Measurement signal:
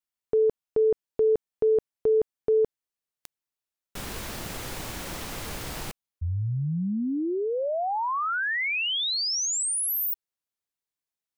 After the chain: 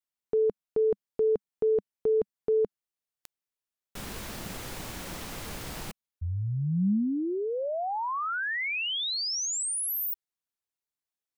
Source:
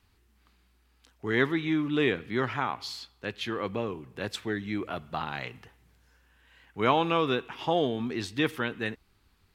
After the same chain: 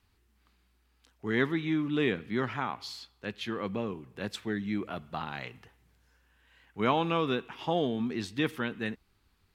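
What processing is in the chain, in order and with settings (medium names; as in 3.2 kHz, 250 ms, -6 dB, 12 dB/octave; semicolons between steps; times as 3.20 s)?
dynamic bell 200 Hz, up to +7 dB, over -46 dBFS, Q 2.2; trim -3.5 dB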